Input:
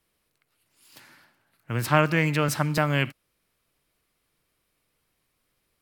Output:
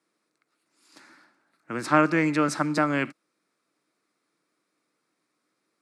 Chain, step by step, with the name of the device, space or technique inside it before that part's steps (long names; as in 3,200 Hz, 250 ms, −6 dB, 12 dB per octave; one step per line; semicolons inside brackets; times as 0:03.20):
television speaker (loudspeaker in its box 180–8,900 Hz, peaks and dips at 310 Hz +8 dB, 1,300 Hz +5 dB, 3,000 Hz −10 dB)
level −1 dB